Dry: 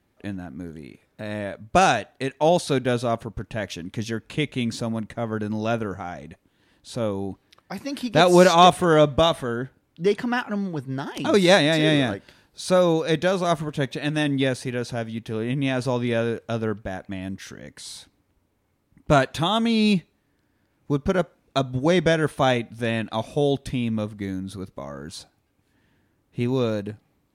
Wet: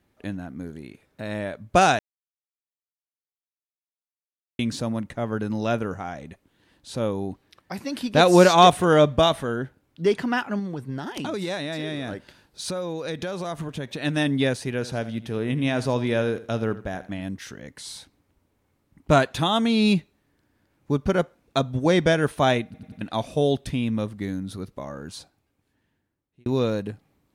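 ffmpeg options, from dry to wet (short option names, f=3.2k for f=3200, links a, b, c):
-filter_complex "[0:a]asettb=1/sr,asplit=3[a][b][c];[a]atrim=end=10.594[d];[b]atrim=start=10.59:end=14.03,asetpts=PTS-STARTPTS,afade=t=in:d=0.004:c=qsin,afade=t=out:st=3.436:d=0.004:c=qsin,acompressor=threshold=-26dB:ratio=6:attack=3.2:release=140:knee=1:detection=peak[e];[c]atrim=start=14.026[f];[d][e]acrossfade=d=0.004:c1=hsin:c2=qsin[g];[g][f]acrossfade=d=0.004:c1=qsin:c2=hsin,asettb=1/sr,asplit=3[h][i][j];[h]atrim=end=14.734[k];[i]atrim=start=14.73:end=17.23,asetpts=PTS-STARTPTS,afade=t=in:d=0.004:c=qsin,afade=t=out:st=2.496:d=0.004:c=qsin,aecho=1:1:80|160|240:0.158|0.046|0.0133,atrim=end_sample=110250[l];[j]atrim=start=17.226[m];[k][l]acrossfade=d=0.004:c1=hsin:c2=qsin[n];[n][m]acrossfade=d=0.004:c1=qsin:c2=hsin,asplit=8[o][p][q][r][s][t][u][v];[o]atrim=end=1.99,asetpts=PTS-STARTPTS,afade=t=out:st=1.986:d=0.004:c=hsin[w];[p]atrim=start=1.99:end=4.59,asetpts=PTS-STARTPTS,volume=0[x];[q]atrim=start=4.59:end=22.742,asetpts=PTS-STARTPTS,afade=t=in:d=0.004:c=hsin[y];[r]atrim=start=22.648:end=22.742[z];[s]atrim=start=22.648:end=22.742[aa];[t]atrim=start=22.648:end=22.742[ab];[u]atrim=start=23.008:end=26.46,asetpts=PTS-STARTPTS,afade=t=out:st=1.912:d=1.54[ac];[v]atrim=start=26.46,asetpts=PTS-STARTPTS,afade=t=in:d=0.004:c=hsin[ad];[w][x][y]concat=n=3:v=0:a=1[ae];[ae][z]acrossfade=d=0.004:c1=hsin:c2=hsin[af];[af][aa]acrossfade=d=0.004:c1=hsin:c2=hsin[ag];[ag][ab]acrossfade=d=0.004:c1=hsin:c2=hsin[ah];[ac][ad]concat=n=2:v=0:a=1[ai];[ah][ai]acrossfade=d=0.004:c1=hsin:c2=hsin"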